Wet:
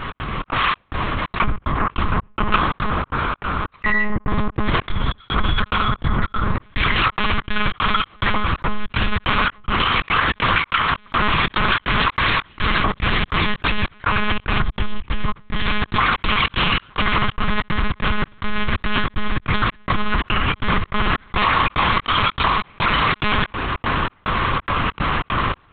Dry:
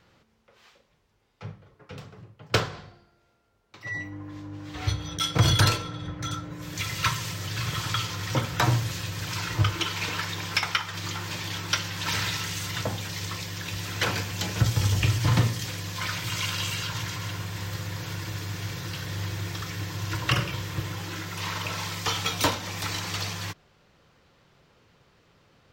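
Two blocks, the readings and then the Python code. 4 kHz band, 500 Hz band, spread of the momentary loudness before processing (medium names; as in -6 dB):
+6.5 dB, +9.0 dB, 11 LU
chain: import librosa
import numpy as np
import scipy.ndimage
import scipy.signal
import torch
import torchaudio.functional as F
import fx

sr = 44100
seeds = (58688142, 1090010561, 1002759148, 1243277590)

y = fx.recorder_agc(x, sr, target_db=-13.5, rise_db_per_s=58.0, max_gain_db=30)
y = scipy.signal.sosfilt(scipy.signal.butter(2, 2900.0, 'lowpass', fs=sr, output='sos'), y)
y = fx.peak_eq(y, sr, hz=460.0, db=-10.0, octaves=2.8)
y = fx.step_gate(y, sr, bpm=144, pattern='x.xx.xx..xxx.x', floor_db=-60.0, edge_ms=4.5)
y = fx.lpc_monotone(y, sr, seeds[0], pitch_hz=210.0, order=8)
y = fx.peak_eq(y, sr, hz=1100.0, db=11.5, octaves=0.5)
y = fx.env_flatten(y, sr, amount_pct=70)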